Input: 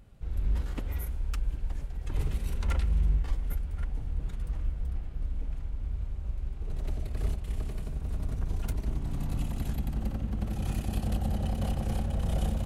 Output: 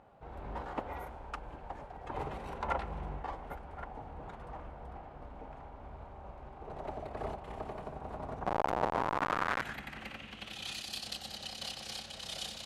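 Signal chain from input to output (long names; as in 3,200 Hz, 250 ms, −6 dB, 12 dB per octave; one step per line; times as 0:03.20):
0:08.46–0:09.62: comparator with hysteresis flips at −48.5 dBFS
band-pass filter sweep 820 Hz → 4,400 Hz, 0:08.85–0:10.87
level +14 dB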